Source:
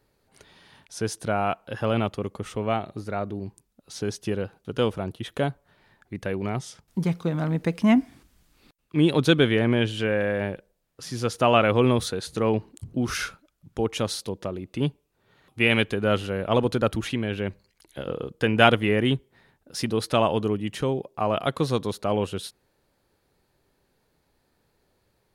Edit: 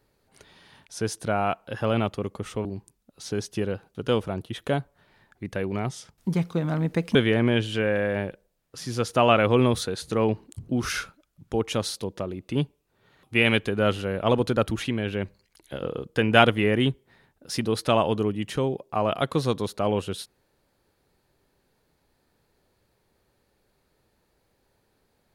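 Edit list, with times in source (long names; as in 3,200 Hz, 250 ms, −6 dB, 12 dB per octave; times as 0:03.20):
0:02.65–0:03.35: remove
0:07.85–0:09.40: remove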